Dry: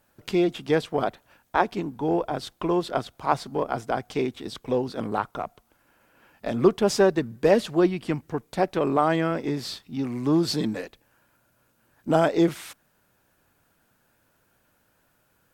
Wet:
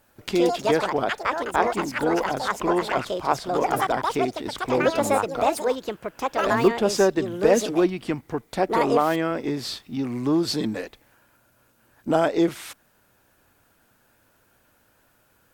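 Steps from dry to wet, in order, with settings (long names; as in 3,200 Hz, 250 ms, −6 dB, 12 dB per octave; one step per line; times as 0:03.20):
parametric band 160 Hz −5.5 dB 0.38 octaves
in parallel at −1 dB: downward compressor, threshold −34 dBFS, peak gain reduction 19.5 dB
on the sum: delay with pitch and tempo change per echo 159 ms, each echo +6 semitones, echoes 2
level −1 dB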